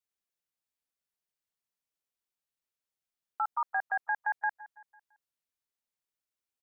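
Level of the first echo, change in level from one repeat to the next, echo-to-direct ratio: -19.0 dB, -6.5 dB, -18.0 dB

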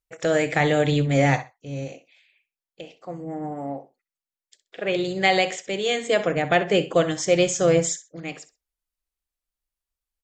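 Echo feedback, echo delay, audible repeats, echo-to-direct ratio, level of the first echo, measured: 19%, 64 ms, 2, -15.0 dB, -15.0 dB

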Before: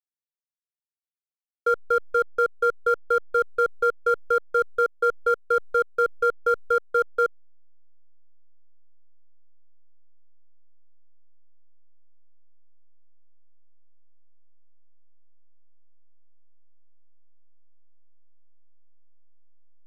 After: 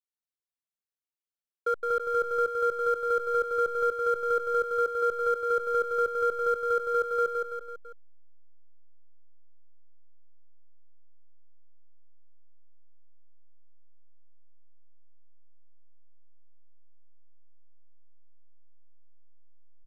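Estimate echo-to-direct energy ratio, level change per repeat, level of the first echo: -2.5 dB, -5.5 dB, -4.0 dB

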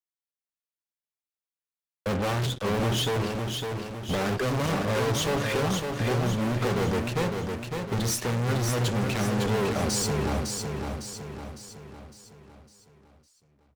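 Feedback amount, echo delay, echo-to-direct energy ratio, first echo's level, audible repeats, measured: 49%, 556 ms, -4.0 dB, -5.0 dB, 5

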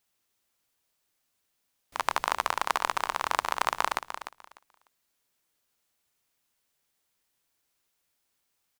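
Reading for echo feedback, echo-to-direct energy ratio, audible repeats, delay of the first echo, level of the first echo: 19%, -10.5 dB, 2, 299 ms, -10.5 dB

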